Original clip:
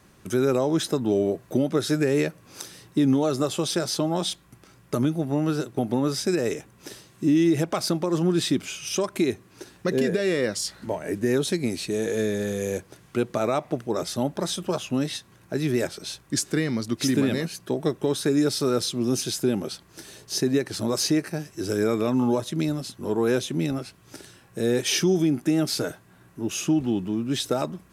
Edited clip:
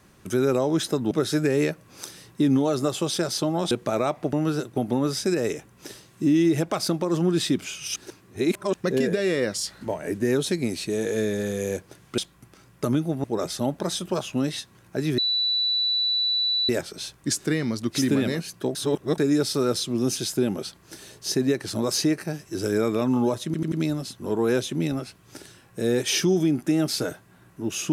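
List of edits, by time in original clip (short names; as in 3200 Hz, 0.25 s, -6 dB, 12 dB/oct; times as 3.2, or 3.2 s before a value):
1.11–1.68 cut
4.28–5.34 swap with 13.19–13.81
8.97–9.75 reverse
15.75 add tone 3960 Hz -20.5 dBFS 1.51 s
17.81–18.24 reverse
22.51 stutter 0.09 s, 4 plays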